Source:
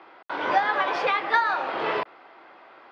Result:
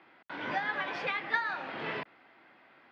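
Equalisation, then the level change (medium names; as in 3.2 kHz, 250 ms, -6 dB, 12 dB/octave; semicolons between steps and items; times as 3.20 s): high-order bell 660 Hz -11.5 dB 2.3 oct; treble shelf 2.2 kHz -11 dB; 0.0 dB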